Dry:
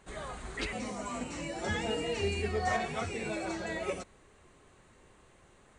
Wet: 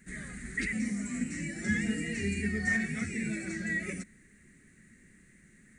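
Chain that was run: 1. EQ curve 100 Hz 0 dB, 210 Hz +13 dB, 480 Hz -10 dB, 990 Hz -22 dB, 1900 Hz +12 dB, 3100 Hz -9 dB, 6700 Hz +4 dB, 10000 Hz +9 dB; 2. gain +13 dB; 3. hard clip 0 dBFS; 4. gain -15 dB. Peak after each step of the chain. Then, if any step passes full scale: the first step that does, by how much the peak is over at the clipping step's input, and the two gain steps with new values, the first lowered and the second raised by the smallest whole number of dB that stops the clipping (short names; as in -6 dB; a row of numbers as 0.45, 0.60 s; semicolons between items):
-15.5, -2.5, -2.5, -17.5 dBFS; no overload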